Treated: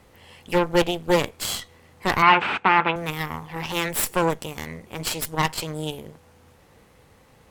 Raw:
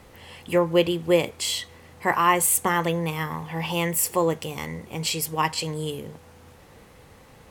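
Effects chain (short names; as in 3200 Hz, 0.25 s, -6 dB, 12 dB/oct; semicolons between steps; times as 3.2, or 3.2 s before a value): added harmonics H 5 -27 dB, 7 -23 dB, 8 -14 dB, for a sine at -5.5 dBFS; 2.22–2.96 speaker cabinet 150–3300 Hz, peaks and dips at 570 Hz -4 dB, 880 Hz +8 dB, 1400 Hz +9 dB, 2500 Hz +10 dB; gain -1.5 dB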